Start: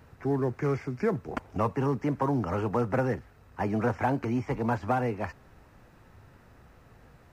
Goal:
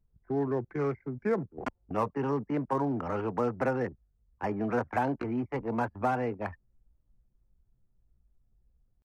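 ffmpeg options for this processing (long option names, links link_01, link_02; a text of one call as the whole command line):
ffmpeg -i in.wav -filter_complex "[0:a]anlmdn=3.98,acrossover=split=180|2400[link_01][link_02][link_03];[link_01]alimiter=level_in=13dB:limit=-24dB:level=0:latency=1:release=266,volume=-13dB[link_04];[link_04][link_02][link_03]amix=inputs=3:normalize=0,crystalizer=i=1:c=0,atempo=0.81,volume=-1.5dB" out.wav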